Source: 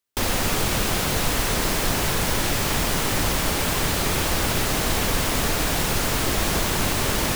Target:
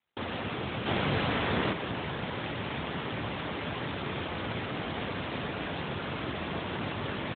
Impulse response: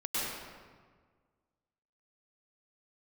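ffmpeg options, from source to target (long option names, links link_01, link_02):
-filter_complex "[0:a]asettb=1/sr,asplit=3[link_01][link_02][link_03];[link_01]atrim=end=0.864[link_04];[link_02]atrim=start=0.86:end=1.73,asetpts=PTS-STARTPTS,afade=type=in:duration=0.004:curve=qsin,afade=type=out:start_time=0.866:duration=0.004:curve=qsin,acontrast=69[link_05];[link_03]atrim=start=1.726[link_06];[link_04][link_05]acrossfade=duration=0.004:curve1=hsin:curve2=qsin[link_07];[link_07][link_06]acrossfade=duration=0.004:curve1=qsin:curve2=hsin,aecho=1:1:193|386:0.1|0.029,volume=-8dB" -ar 8000 -c:a libopencore_amrnb -b:a 12200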